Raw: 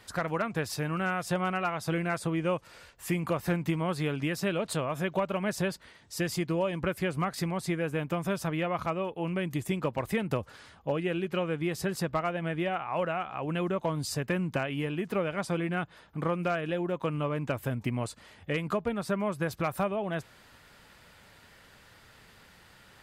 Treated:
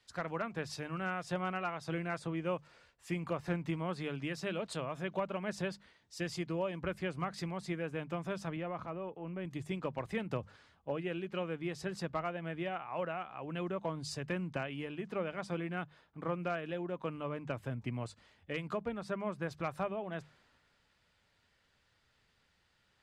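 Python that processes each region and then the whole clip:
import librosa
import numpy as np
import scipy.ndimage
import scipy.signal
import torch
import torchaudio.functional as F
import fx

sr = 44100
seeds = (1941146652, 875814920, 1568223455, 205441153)

y = fx.chain(x, sr, fx.highpass(hz=94.0, slope=12),
    fx.high_shelf(hz=2000.0, db=-9.0),
    fx.transient(attack_db=-4, sustain_db=4), at=(8.56, 9.45))
y = scipy.signal.sosfilt(scipy.signal.butter(2, 6700.0, 'lowpass', fs=sr, output='sos'), y)
y = fx.hum_notches(y, sr, base_hz=50, count=4)
y = fx.band_widen(y, sr, depth_pct=40)
y = y * 10.0 ** (-7.0 / 20.0)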